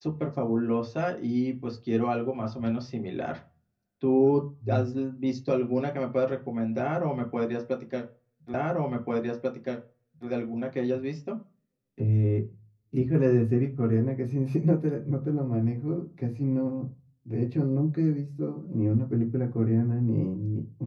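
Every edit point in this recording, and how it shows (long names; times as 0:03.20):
0:08.54: the same again, the last 1.74 s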